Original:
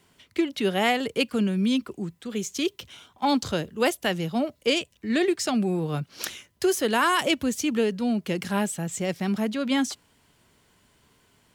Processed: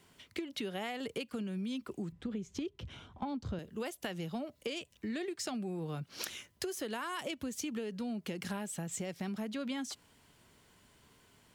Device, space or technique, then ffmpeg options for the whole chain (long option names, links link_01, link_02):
serial compression, peaks first: -filter_complex "[0:a]asettb=1/sr,asplit=3[link_01][link_02][link_03];[link_01]atrim=end=2.124[link_04];[link_02]atrim=start=2.12:end=3.59,asetpts=PTS-STARTPTS,afade=type=in:duration=0.004:curve=qsin,afade=type=out:start_time=1.466:duration=0.004:curve=qsin,aemphasis=mode=reproduction:type=riaa[link_05];[link_03]atrim=start=3.586[link_06];[link_04][link_05]acrossfade=duration=0.004:curve1=hsin:curve2=qsin[link_07];[link_07][link_06]acrossfade=duration=0.004:curve1=qsin:curve2=hsin,acompressor=threshold=-29dB:ratio=6,acompressor=threshold=-35dB:ratio=2.5,volume=-2dB"